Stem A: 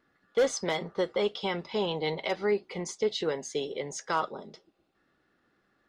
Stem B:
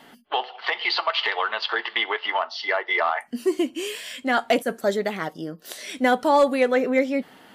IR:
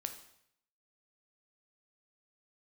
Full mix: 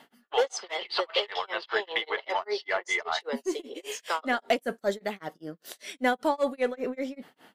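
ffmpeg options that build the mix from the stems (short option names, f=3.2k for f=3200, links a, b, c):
-filter_complex "[0:a]highpass=f=430:w=0.5412,highpass=f=430:w=1.3066,volume=2dB[a];[1:a]aeval=exprs='0.355*(cos(1*acos(clip(val(0)/0.355,-1,1)))-cos(1*PI/2))+0.00447*(cos(6*acos(clip(val(0)/0.355,-1,1)))-cos(6*PI/2))':c=same,volume=-3.5dB[b];[a][b]amix=inputs=2:normalize=0,lowshelf=f=95:g=-6,tremolo=f=5.1:d=0.99"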